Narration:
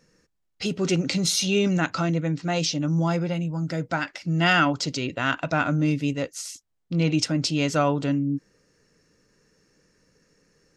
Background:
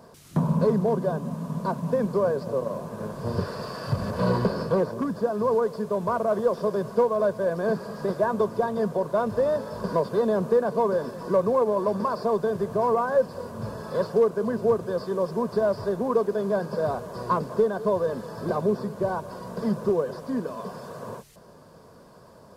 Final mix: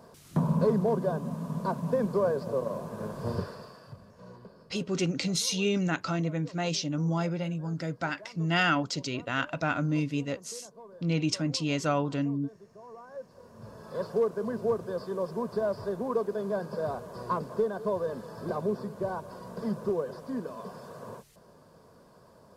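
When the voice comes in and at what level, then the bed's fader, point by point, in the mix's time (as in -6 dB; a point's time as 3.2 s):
4.10 s, -5.5 dB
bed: 3.31 s -3 dB
4.12 s -26 dB
12.85 s -26 dB
14.12 s -6 dB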